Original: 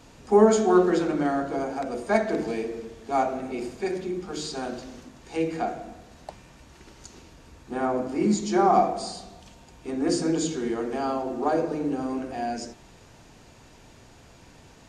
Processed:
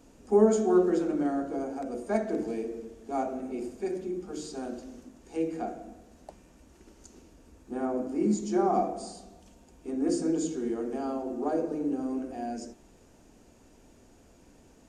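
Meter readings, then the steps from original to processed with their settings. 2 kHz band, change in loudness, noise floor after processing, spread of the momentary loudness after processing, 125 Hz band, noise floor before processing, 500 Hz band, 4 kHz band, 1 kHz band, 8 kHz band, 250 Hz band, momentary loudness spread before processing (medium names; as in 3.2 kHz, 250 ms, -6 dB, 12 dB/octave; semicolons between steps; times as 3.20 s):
-11.0 dB, -4.5 dB, -58 dBFS, 16 LU, -6.0 dB, -52 dBFS, -4.0 dB, -11.5 dB, -8.0 dB, -6.5 dB, -3.0 dB, 18 LU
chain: graphic EQ 125/250/1000/2000/4000 Hz -10/+4/-6/-6/-9 dB; trim -3.5 dB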